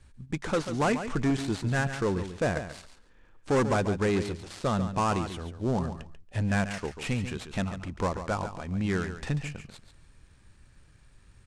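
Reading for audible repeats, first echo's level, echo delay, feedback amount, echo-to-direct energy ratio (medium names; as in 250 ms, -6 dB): 2, -10.0 dB, 140 ms, 17%, -10.0 dB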